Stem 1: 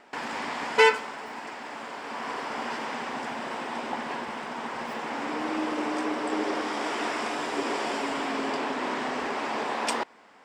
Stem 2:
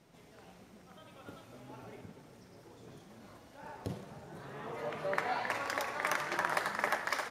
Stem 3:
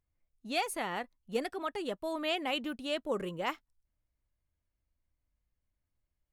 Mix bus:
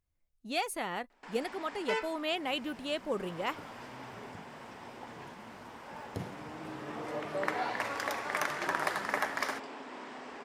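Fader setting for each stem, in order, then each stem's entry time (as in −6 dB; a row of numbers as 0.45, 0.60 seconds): −15.0, +0.5, −0.5 decibels; 1.10, 2.30, 0.00 seconds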